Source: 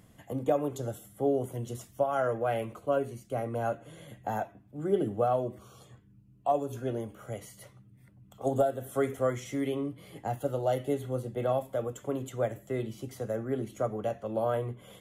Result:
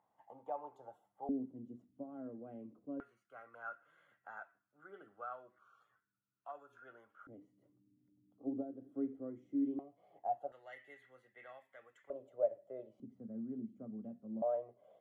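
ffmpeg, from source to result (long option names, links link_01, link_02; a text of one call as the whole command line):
ffmpeg -i in.wav -af "asetnsamples=nb_out_samples=441:pad=0,asendcmd='1.29 bandpass f 260;3 bandpass f 1400;7.27 bandpass f 290;9.79 bandpass f 710;10.52 bandpass f 1900;12.1 bandpass f 590;13 bandpass f 230;14.42 bandpass f 640',bandpass=frequency=870:width_type=q:width=8.5:csg=0" out.wav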